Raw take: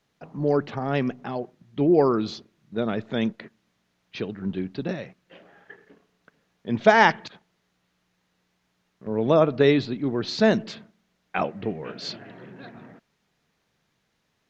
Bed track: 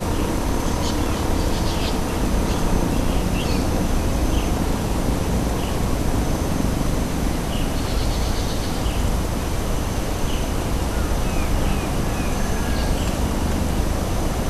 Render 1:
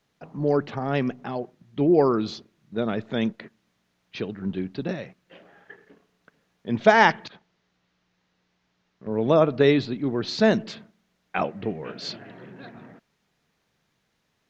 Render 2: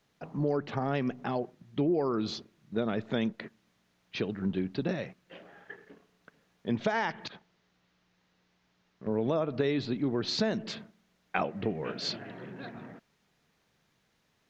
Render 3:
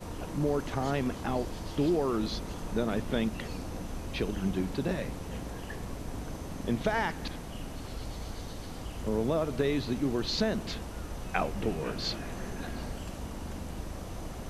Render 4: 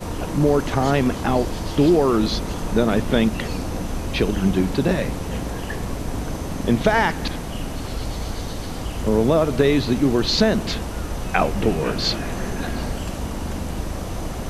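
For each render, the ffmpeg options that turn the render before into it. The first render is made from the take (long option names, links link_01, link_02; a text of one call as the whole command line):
ffmpeg -i in.wav -filter_complex "[0:a]asettb=1/sr,asplit=3[link_01][link_02][link_03];[link_01]atrim=end=7.264[link_04];[link_02]atrim=start=7.26:end=9.11,asetpts=PTS-STARTPTS,afade=type=in:duration=0.004:curve=qsin,afade=type=out:start_time=1.846:duration=0.004:curve=qsin,lowpass=frequency=6300:width=0.5412,lowpass=frequency=6300:width=1.3066[link_05];[link_03]atrim=start=9.106[link_06];[link_04][link_05]acrossfade=duration=0.004:curve1=hsin:curve2=qsin[link_07];[link_07][link_06]acrossfade=duration=0.004:curve1=qsin:curve2=hsin" out.wav
ffmpeg -i in.wav -af "alimiter=limit=-10.5dB:level=0:latency=1:release=186,acompressor=threshold=-26dB:ratio=4" out.wav
ffmpeg -i in.wav -i bed.wav -filter_complex "[1:a]volume=-17.5dB[link_01];[0:a][link_01]amix=inputs=2:normalize=0" out.wav
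ffmpeg -i in.wav -af "volume=11.5dB,alimiter=limit=-3dB:level=0:latency=1" out.wav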